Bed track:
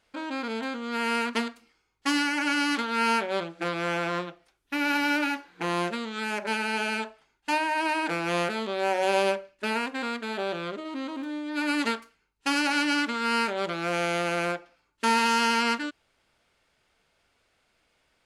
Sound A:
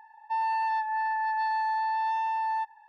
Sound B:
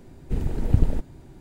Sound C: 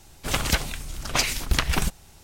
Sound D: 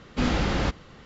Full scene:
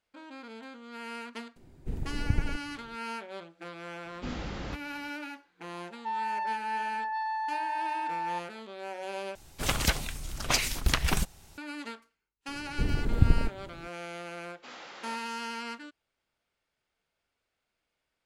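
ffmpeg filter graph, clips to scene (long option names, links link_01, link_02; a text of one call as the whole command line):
ffmpeg -i bed.wav -i cue0.wav -i cue1.wav -i cue2.wav -i cue3.wav -filter_complex "[2:a]asplit=2[link_01][link_02];[4:a]asplit=2[link_03][link_04];[0:a]volume=-13.5dB[link_05];[link_04]highpass=660[link_06];[link_05]asplit=2[link_07][link_08];[link_07]atrim=end=9.354[link_09];[3:a]atrim=end=2.23,asetpts=PTS-STARTPTS,volume=-3.5dB[link_10];[link_08]atrim=start=11.576[link_11];[link_01]atrim=end=1.4,asetpts=PTS-STARTPTS,volume=-9dB,afade=type=in:duration=0.004:curve=hsin,afade=type=out:start_time=1.396:duration=0.004:curve=hsin,adelay=1560[link_12];[link_03]atrim=end=1.05,asetpts=PTS-STARTPTS,volume=-12.5dB,afade=type=in:duration=0.004:curve=hsin,afade=type=out:start_time=1.046:duration=0.004:curve=hsin,adelay=178605S[link_13];[1:a]atrim=end=2.88,asetpts=PTS-STARTPTS,volume=-4.5dB,afade=type=in:duration=0.004:curve=hsin,afade=type=out:start_time=2.876:duration=0.004:curve=hsin,adelay=5750[link_14];[link_02]atrim=end=1.4,asetpts=PTS-STARTPTS,volume=-3dB,afade=type=in:duration=0.004:curve=hsin,afade=type=out:start_time=1.396:duration=0.004:curve=hsin,adelay=12480[link_15];[link_06]atrim=end=1.05,asetpts=PTS-STARTPTS,volume=-15dB,afade=type=in:duration=0.004:curve=hsin,afade=type=out:start_time=1.046:duration=0.004:curve=hsin,adelay=14460[link_16];[link_09][link_10]acrossfade=duration=0.004:curve1=hsin:curve2=hsin[link_17];[link_17][link_11]acrossfade=duration=0.004:curve1=hsin:curve2=hsin[link_18];[link_18][link_12][link_13][link_14][link_15][link_16]amix=inputs=6:normalize=0" out.wav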